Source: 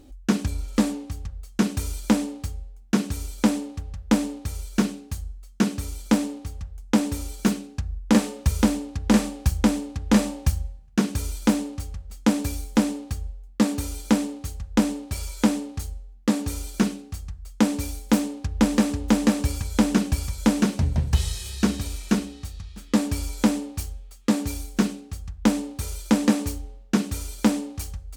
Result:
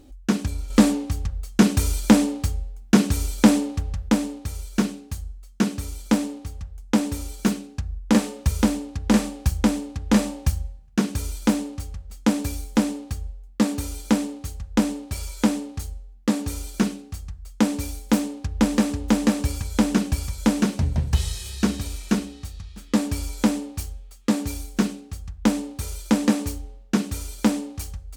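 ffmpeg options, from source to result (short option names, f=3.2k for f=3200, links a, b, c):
-filter_complex "[0:a]asettb=1/sr,asplit=3[a][b][c];[a]atrim=end=0.704[d];[b]atrim=start=0.7:end=4.09,asetpts=PTS-STARTPTS,afade=t=in:d=0.004:c=qsin,afade=t=out:st=3.386:d=0.004:c=qsin,acontrast=74[e];[c]atrim=start=4.086[f];[d][e]acrossfade=d=0.004:c1=hsin:c2=qsin[g];[g][f]acrossfade=d=0.004:c1=qsin:c2=hsin"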